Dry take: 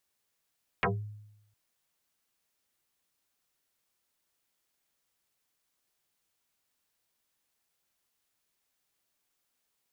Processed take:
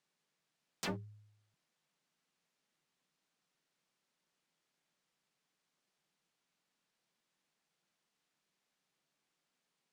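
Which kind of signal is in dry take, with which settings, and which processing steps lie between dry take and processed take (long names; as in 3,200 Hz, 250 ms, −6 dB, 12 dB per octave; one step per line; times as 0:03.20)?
two-operator FM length 0.71 s, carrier 105 Hz, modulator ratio 2.8, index 10, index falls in 0.23 s exponential, decay 0.89 s, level −22.5 dB
high-frequency loss of the air 68 metres
wave folding −32 dBFS
low shelf with overshoot 120 Hz −9 dB, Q 3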